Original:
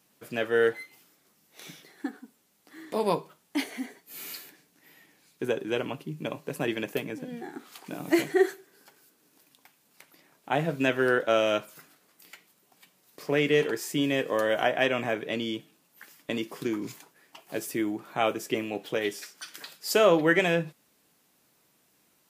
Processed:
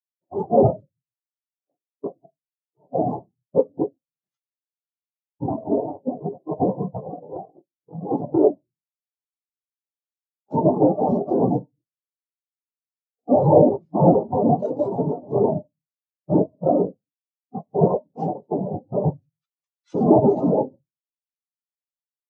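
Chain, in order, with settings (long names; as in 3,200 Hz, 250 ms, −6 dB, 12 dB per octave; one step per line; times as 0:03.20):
every overlapping window played backwards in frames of 44 ms
low-pass filter 5,800 Hz 12 dB per octave
bass and treble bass +12 dB, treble +4 dB
mains-hum notches 60/120/180/240/300/360 Hz
in parallel at +1 dB: downward compressor 6 to 1, threshold −34 dBFS, peak gain reduction 15.5 dB
on the sum: cochlear-implant simulation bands 2
on a send at −8 dB: convolution reverb RT60 0.60 s, pre-delay 7 ms
on the sum: boost into a limiter +15 dB
every bin expanded away from the loudest bin 4 to 1
level −1 dB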